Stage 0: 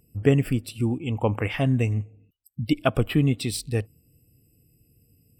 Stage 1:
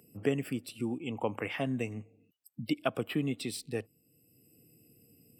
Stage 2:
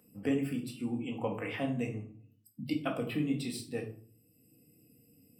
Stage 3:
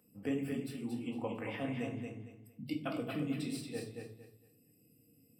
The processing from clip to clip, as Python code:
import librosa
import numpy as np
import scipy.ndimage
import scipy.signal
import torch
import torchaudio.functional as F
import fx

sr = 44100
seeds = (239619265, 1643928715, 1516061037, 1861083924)

y1 = scipy.signal.sosfilt(scipy.signal.butter(2, 210.0, 'highpass', fs=sr, output='sos'), x)
y1 = fx.band_squash(y1, sr, depth_pct=40)
y1 = y1 * librosa.db_to_amplitude(-7.0)
y2 = fx.room_shoebox(y1, sr, seeds[0], volume_m3=390.0, walls='furnished', distance_m=2.0)
y2 = y2 * librosa.db_to_amplitude(-5.0)
y3 = fx.echo_feedback(y2, sr, ms=228, feedback_pct=27, wet_db=-5.0)
y3 = y3 * librosa.db_to_amplitude(-5.0)